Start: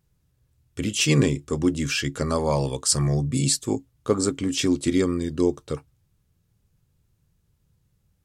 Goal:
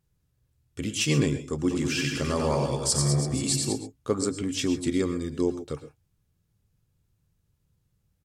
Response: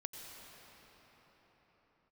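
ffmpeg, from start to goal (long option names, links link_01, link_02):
-filter_complex "[0:a]asplit=3[link_01][link_02][link_03];[link_01]afade=type=out:start_time=1.68:duration=0.02[link_04];[link_02]aecho=1:1:90|198|327.6|483.1|669.7:0.631|0.398|0.251|0.158|0.1,afade=type=in:start_time=1.68:duration=0.02,afade=type=out:start_time=3.72:duration=0.02[link_05];[link_03]afade=type=in:start_time=3.72:duration=0.02[link_06];[link_04][link_05][link_06]amix=inputs=3:normalize=0[link_07];[1:a]atrim=start_sample=2205,afade=type=out:start_time=0.16:duration=0.01,atrim=end_sample=7497,asetrate=35721,aresample=44100[link_08];[link_07][link_08]afir=irnorm=-1:irlink=0,volume=-1dB"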